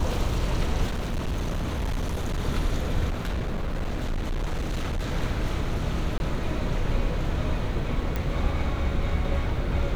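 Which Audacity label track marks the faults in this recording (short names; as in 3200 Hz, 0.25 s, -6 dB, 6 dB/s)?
0.860000	2.400000	clipped -24 dBFS
3.100000	5.130000	clipped -24 dBFS
6.180000	6.200000	gap 21 ms
8.160000	8.160000	pop -15 dBFS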